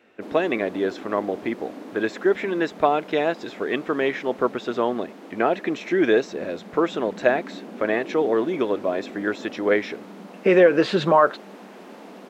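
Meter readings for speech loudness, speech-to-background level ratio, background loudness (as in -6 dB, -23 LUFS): -23.0 LUFS, 17.5 dB, -40.5 LUFS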